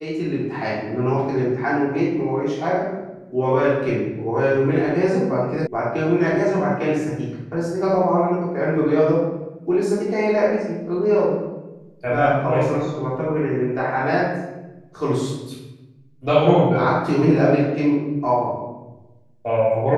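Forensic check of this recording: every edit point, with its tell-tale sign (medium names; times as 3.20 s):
5.67 s: sound stops dead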